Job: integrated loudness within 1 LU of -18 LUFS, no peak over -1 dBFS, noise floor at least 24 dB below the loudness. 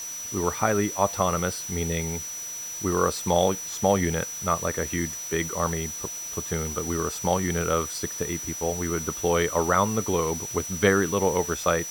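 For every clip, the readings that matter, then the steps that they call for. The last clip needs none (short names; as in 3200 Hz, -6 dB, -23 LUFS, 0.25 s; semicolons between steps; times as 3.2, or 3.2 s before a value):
steady tone 5900 Hz; tone level -33 dBFS; noise floor -35 dBFS; noise floor target -50 dBFS; loudness -26.0 LUFS; peak -6.0 dBFS; loudness target -18.0 LUFS
-> notch 5900 Hz, Q 30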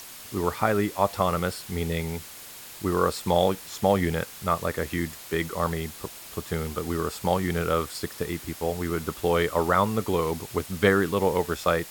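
steady tone none; noise floor -43 dBFS; noise floor target -51 dBFS
-> denoiser 8 dB, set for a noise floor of -43 dBFS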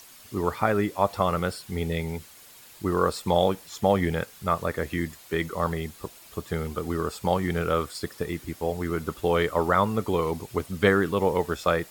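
noise floor -50 dBFS; noise floor target -51 dBFS
-> denoiser 6 dB, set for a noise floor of -50 dBFS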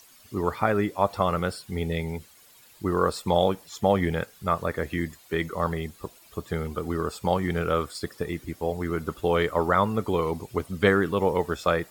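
noise floor -54 dBFS; loudness -27.0 LUFS; peak -6.5 dBFS; loudness target -18.0 LUFS
-> gain +9 dB; limiter -1 dBFS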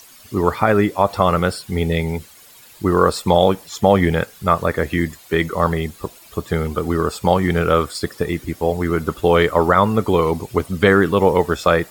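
loudness -18.5 LUFS; peak -1.0 dBFS; noise floor -45 dBFS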